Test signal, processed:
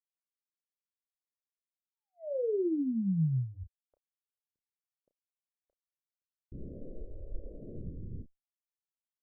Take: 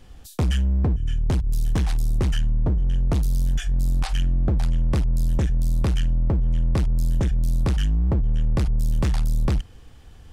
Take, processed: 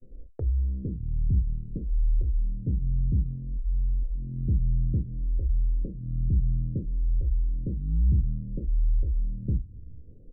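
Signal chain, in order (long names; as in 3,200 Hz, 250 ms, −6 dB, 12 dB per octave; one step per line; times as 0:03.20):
Butterworth low-pass 580 Hz 72 dB per octave
downward expander −42 dBFS
low-shelf EQ 150 Hz +6 dB
downward compressor, threshold −21 dBFS
double-tracking delay 31 ms −10.5 dB
treble cut that deepens with the level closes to 320 Hz, closed at −24 dBFS
phaser with staggered stages 0.59 Hz
level +1 dB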